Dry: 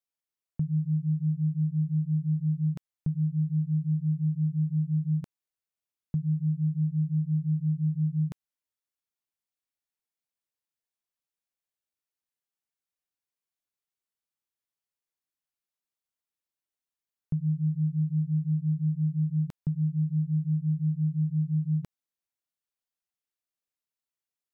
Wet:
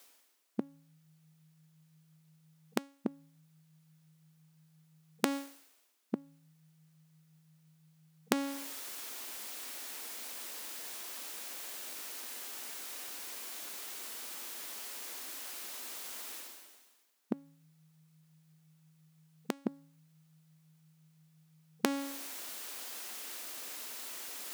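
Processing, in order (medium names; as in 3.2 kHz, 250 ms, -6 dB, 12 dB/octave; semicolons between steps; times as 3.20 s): de-hum 277.7 Hz, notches 36; reverse; upward compressor, threshold -34 dBFS; reverse; brick-wall FIR high-pass 210 Hz; trim +16 dB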